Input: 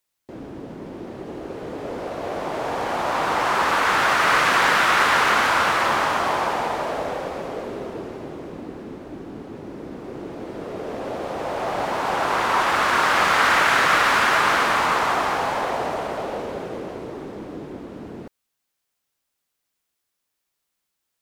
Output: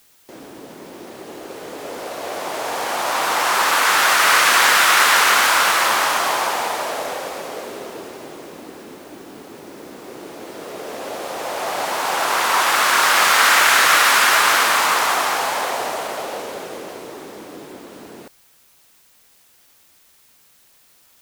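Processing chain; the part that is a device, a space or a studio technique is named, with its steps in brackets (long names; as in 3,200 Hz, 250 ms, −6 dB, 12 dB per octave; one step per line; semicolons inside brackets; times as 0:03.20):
turntable without a phono preamp (RIAA equalisation recording; white noise bed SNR 35 dB)
level +2 dB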